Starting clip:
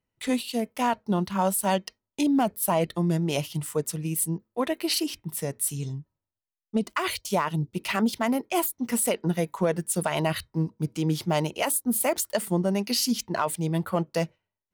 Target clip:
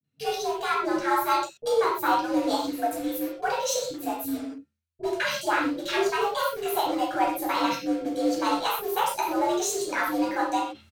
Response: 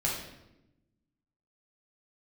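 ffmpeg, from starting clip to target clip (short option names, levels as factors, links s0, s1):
-filter_complex "[0:a]asetrate=59535,aresample=44100,afreqshift=83,acrossover=split=480|1300[s0][s1][s2];[s1]acrusher=bits=6:mix=0:aa=0.000001[s3];[s0][s3][s2]amix=inputs=3:normalize=0,aemphasis=mode=reproduction:type=50fm,acrossover=split=410[s4][s5];[s5]adelay=40[s6];[s4][s6]amix=inputs=2:normalize=0[s7];[1:a]atrim=start_sample=2205,atrim=end_sample=6174[s8];[s7][s8]afir=irnorm=-1:irlink=0,areverse,acompressor=mode=upward:threshold=0.0398:ratio=2.5,areverse,highshelf=f=5500:g=7,volume=0.596"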